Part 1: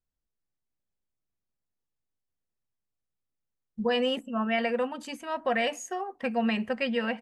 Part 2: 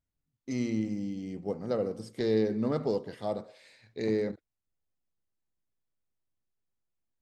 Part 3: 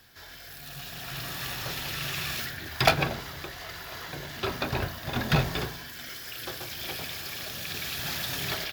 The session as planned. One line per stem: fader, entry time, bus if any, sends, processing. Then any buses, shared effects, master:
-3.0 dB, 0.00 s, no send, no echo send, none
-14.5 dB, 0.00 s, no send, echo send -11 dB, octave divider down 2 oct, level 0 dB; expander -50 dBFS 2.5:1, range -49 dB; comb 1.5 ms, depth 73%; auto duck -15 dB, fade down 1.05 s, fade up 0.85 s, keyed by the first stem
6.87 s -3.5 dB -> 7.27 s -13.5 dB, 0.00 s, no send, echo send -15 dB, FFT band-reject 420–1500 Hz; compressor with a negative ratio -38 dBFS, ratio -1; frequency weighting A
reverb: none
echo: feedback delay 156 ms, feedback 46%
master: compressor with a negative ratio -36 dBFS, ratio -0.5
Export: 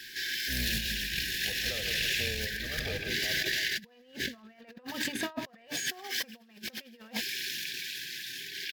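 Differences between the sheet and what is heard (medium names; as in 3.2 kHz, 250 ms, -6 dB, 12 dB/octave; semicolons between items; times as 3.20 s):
stem 1 -3.0 dB -> +4.0 dB; stem 3 -3.5 dB -> +3.0 dB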